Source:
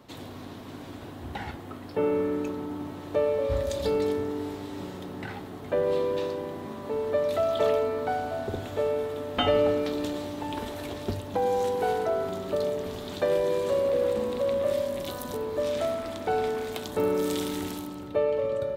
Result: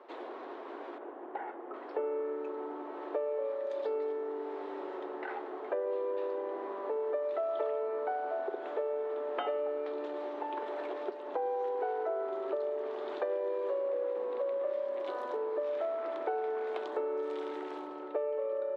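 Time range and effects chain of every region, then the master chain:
0:00.98–0:01.74: head-to-tape spacing loss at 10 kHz 35 dB + notch filter 4,000 Hz, Q 18
whole clip: low-pass filter 1,600 Hz 12 dB per octave; downward compressor, threshold −34 dBFS; Chebyshev high-pass filter 360 Hz, order 4; level +3.5 dB

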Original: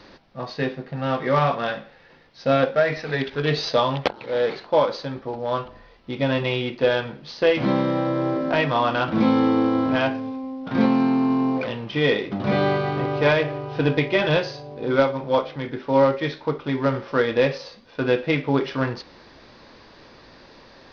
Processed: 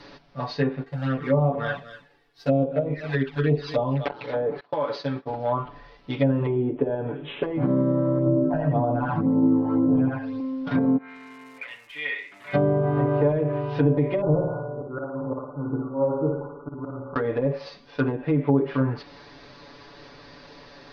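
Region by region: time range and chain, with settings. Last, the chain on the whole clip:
0:00.83–0:04.05: mu-law and A-law mismatch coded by A + flanger swept by the level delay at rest 2.8 ms, full sweep at −17.5 dBFS + single-tap delay 245 ms −15 dB
0:04.60–0:05.30: high-pass filter 110 Hz + downward expander −34 dBFS + downward compressor 10 to 1, threshold −22 dBFS
0:06.46–0:07.43: parametric band 370 Hz +12 dB 1 octave + bad sample-rate conversion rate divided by 6×, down none, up filtered
0:08.18–0:10.40: dynamic equaliser 3,100 Hz, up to −7 dB, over −43 dBFS, Q 1.6 + all-pass phaser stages 12, 1.9 Hz, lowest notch 350–2,600 Hz + single-tap delay 85 ms −3 dB
0:10.96–0:12.53: resonant band-pass 2,100 Hz, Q 3.9 + surface crackle 310 per second −45 dBFS
0:14.21–0:17.16: linear-phase brick-wall low-pass 1,500 Hz + volume swells 418 ms + flutter between parallel walls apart 9.7 metres, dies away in 0.79 s
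whole clip: brickwall limiter −13 dBFS; treble cut that deepens with the level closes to 600 Hz, closed at −18.5 dBFS; comb filter 7 ms, depth 95%; level −1.5 dB

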